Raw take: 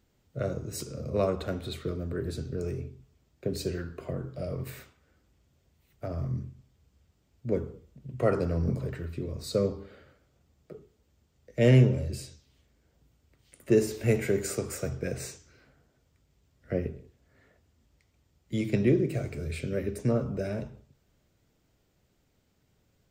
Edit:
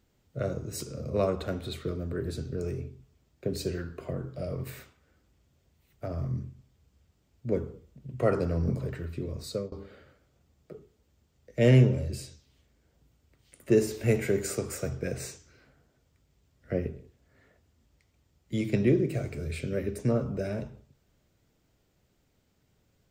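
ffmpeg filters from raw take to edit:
-filter_complex "[0:a]asplit=2[a][b];[a]atrim=end=9.72,asetpts=PTS-STARTPTS,afade=t=out:st=9.4:d=0.32:silence=0.0891251[c];[b]atrim=start=9.72,asetpts=PTS-STARTPTS,afade=t=in:d=0.004:c=hsin:silence=0.0891251[d];[c][d]concat=n=2:v=0:a=1"

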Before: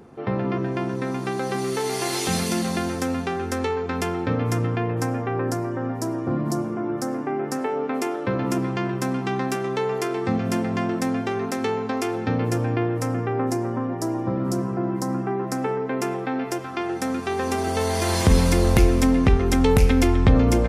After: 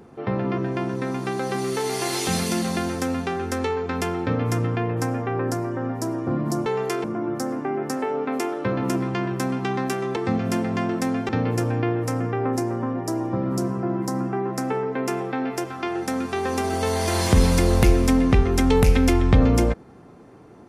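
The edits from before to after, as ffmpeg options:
-filter_complex "[0:a]asplit=5[a][b][c][d][e];[a]atrim=end=6.662[f];[b]atrim=start=9.778:end=10.162[g];[c]atrim=start=6.658:end=9.782[h];[d]atrim=start=10.158:end=11.292[i];[e]atrim=start=12.228[j];[f][g]acrossfade=d=0.004:c1=hsin:c2=hsin[k];[k][h]acrossfade=d=0.004:c1=hsin:c2=hsin[l];[l][i]acrossfade=d=0.004:c1=hsin:c2=hsin[m];[m][j]acrossfade=d=0.004:c1=hsin:c2=hsin"

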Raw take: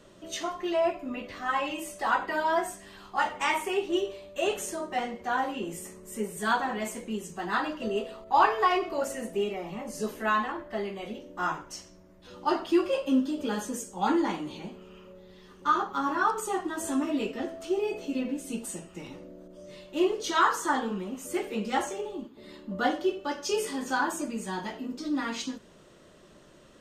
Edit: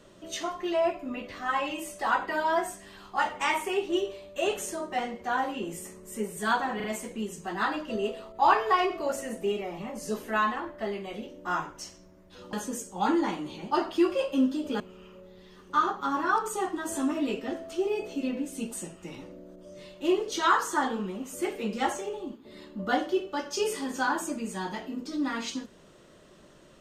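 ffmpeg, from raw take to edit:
-filter_complex "[0:a]asplit=6[a][b][c][d][e][f];[a]atrim=end=6.802[g];[b]atrim=start=6.758:end=6.802[h];[c]atrim=start=6.758:end=12.452[i];[d]atrim=start=13.538:end=14.722[j];[e]atrim=start=12.448:end=13.542[k];[f]atrim=start=14.718[l];[g][h]acrossfade=d=0.004:c1=hsin:c2=hsin[m];[m][i]acrossfade=d=0.004:c1=hsin:c2=hsin[n];[n][j]acrossfade=d=0.004:c1=hsin:c2=hsin[o];[o][k]acrossfade=d=0.004:c1=hsin:c2=hsin[p];[p][l]acrossfade=d=0.004:c1=hsin:c2=hsin"

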